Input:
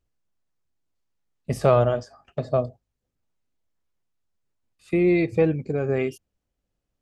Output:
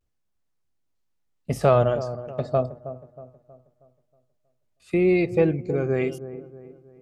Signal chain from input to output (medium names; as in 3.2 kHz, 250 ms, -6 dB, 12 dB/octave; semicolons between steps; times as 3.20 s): vibrato 0.82 Hz 59 cents; on a send: feedback echo behind a low-pass 318 ms, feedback 42%, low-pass 1 kHz, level -12.5 dB